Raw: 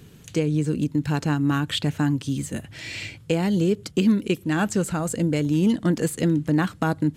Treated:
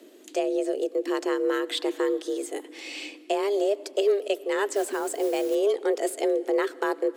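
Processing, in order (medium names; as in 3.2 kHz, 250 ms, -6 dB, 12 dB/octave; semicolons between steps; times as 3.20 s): frequency shift +200 Hz; algorithmic reverb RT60 2.9 s, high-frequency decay 0.7×, pre-delay 55 ms, DRR 20 dB; 4.73–5.55 s: modulation noise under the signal 21 dB; trim -3.5 dB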